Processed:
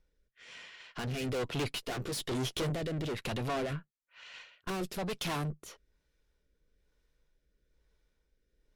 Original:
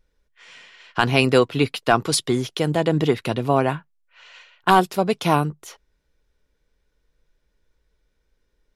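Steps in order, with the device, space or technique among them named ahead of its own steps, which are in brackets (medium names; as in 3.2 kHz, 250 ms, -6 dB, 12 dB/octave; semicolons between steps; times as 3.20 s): 1.75–2.70 s: doubling 15 ms -2 dB; overdriven rotary cabinet (valve stage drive 30 dB, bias 0.6; rotary cabinet horn 1.1 Hz)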